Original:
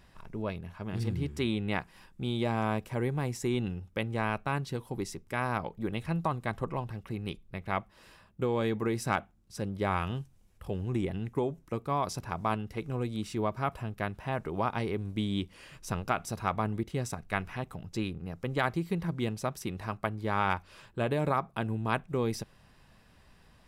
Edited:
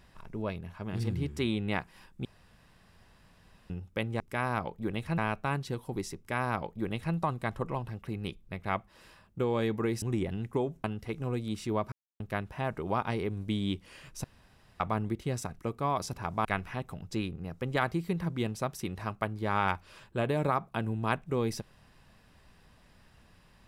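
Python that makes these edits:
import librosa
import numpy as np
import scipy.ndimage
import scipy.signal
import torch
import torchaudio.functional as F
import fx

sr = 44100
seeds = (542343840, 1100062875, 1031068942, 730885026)

y = fx.edit(x, sr, fx.room_tone_fill(start_s=2.25, length_s=1.45),
    fx.duplicate(start_s=5.19, length_s=0.98, to_s=4.2),
    fx.cut(start_s=9.04, length_s=1.8),
    fx.move(start_s=11.66, length_s=0.86, to_s=17.27),
    fx.silence(start_s=13.6, length_s=0.28),
    fx.room_tone_fill(start_s=15.92, length_s=0.56), tone=tone)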